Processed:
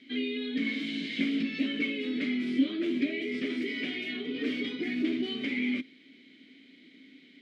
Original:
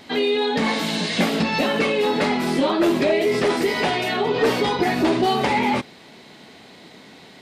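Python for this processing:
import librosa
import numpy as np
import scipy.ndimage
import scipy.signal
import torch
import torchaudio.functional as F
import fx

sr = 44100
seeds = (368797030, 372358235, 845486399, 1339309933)

y = fx.vowel_filter(x, sr, vowel='i')
y = fx.low_shelf(y, sr, hz=170.0, db=-7.0)
y = F.gain(torch.from_numpy(y), 1.5).numpy()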